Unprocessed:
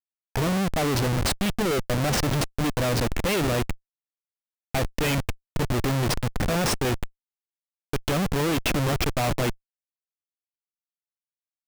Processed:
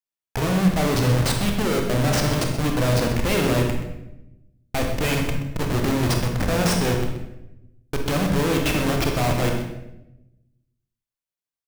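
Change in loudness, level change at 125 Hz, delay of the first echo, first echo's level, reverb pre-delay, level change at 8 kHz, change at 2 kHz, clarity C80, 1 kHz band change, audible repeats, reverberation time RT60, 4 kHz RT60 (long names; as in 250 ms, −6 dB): +3.5 dB, +4.5 dB, 127 ms, −11.5 dB, 26 ms, +1.5 dB, +2.5 dB, 6.5 dB, +2.0 dB, 1, 0.90 s, 0.65 s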